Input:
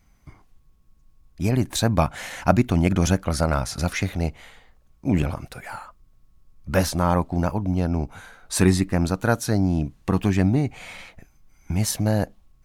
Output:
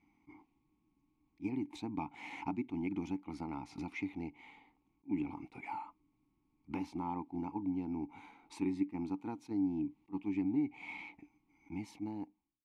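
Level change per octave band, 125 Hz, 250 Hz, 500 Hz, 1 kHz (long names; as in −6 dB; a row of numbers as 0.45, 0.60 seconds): −26.0, −13.0, −22.0, −16.0 decibels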